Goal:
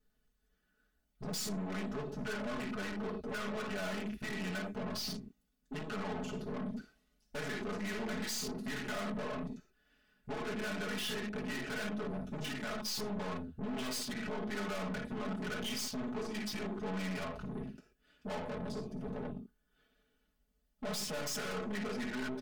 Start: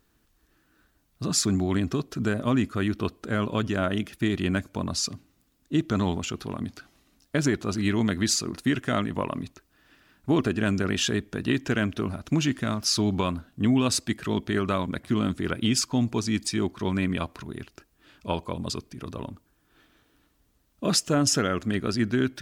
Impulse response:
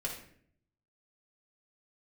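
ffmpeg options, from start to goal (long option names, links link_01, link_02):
-filter_complex "[0:a]bandreject=frequency=1000:width=12,acrossover=split=490[link_01][link_02];[link_01]acompressor=threshold=-34dB:ratio=6[link_03];[link_03][link_02]amix=inputs=2:normalize=0[link_04];[1:a]atrim=start_sample=2205,atrim=end_sample=6174[link_05];[link_04][link_05]afir=irnorm=-1:irlink=0,afwtdn=0.02,aeval=exprs='(tanh(100*val(0)+0.25)-tanh(0.25))/100':channel_layout=same,aecho=1:1:4.7:0.87"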